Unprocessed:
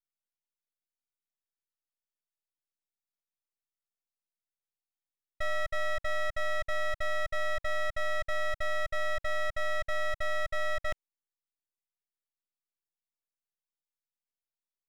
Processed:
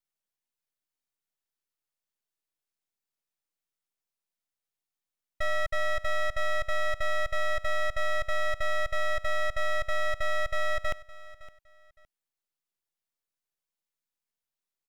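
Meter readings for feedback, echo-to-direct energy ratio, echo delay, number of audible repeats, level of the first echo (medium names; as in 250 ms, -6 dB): 25%, -18.0 dB, 563 ms, 2, -18.5 dB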